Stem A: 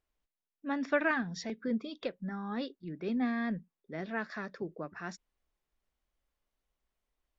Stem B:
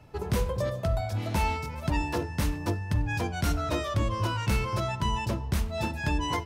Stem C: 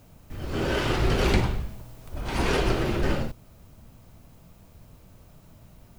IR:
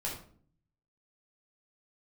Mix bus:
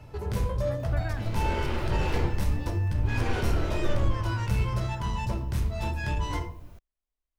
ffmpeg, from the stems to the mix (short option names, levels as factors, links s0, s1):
-filter_complex "[0:a]volume=0.282[s0];[1:a]volume=1.26,asplit=2[s1][s2];[s2]volume=0.237[s3];[2:a]bass=f=250:g=-7,treble=f=4000:g=-5,acompressor=mode=upward:threshold=0.00631:ratio=2.5,adelay=800,volume=0.398,asplit=2[s4][s5];[s5]volume=0.668[s6];[s1][s4]amix=inputs=2:normalize=0,asoftclip=type=tanh:threshold=0.0355,acompressor=threshold=0.00794:ratio=2,volume=1[s7];[3:a]atrim=start_sample=2205[s8];[s3][s6]amix=inputs=2:normalize=0[s9];[s9][s8]afir=irnorm=-1:irlink=0[s10];[s0][s7][s10]amix=inputs=3:normalize=0,lowshelf=f=65:g=9"